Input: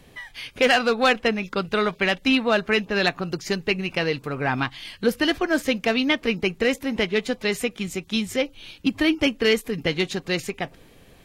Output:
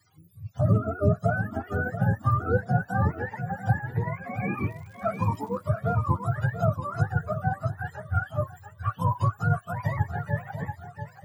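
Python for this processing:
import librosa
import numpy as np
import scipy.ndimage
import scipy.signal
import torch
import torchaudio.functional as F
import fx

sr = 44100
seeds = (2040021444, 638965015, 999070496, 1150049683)

p1 = fx.octave_mirror(x, sr, pivot_hz=560.0)
p2 = fx.noise_reduce_blind(p1, sr, reduce_db=13)
p3 = fx.dmg_crackle(p2, sr, seeds[0], per_s=97.0, level_db=-39.0, at=(4.66, 5.57), fade=0.02)
p4 = p3 + fx.echo_feedback(p3, sr, ms=685, feedback_pct=25, wet_db=-9.5, dry=0)
y = fx.comb_cascade(p4, sr, direction='rising', hz=1.3)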